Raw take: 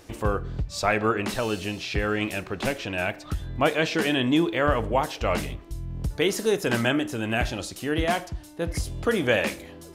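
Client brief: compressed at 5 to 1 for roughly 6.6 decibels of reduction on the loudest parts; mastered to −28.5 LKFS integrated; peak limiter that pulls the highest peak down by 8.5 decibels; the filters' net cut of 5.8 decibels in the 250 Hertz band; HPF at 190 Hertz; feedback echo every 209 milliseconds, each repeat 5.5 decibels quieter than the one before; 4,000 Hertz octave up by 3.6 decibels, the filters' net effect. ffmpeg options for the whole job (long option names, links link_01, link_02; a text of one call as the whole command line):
ffmpeg -i in.wav -af "highpass=190,equalizer=frequency=250:width_type=o:gain=-6.5,equalizer=frequency=4000:width_type=o:gain=5,acompressor=threshold=-25dB:ratio=5,alimiter=limit=-21dB:level=0:latency=1,aecho=1:1:209|418|627|836|1045|1254|1463:0.531|0.281|0.149|0.079|0.0419|0.0222|0.0118,volume=3dB" out.wav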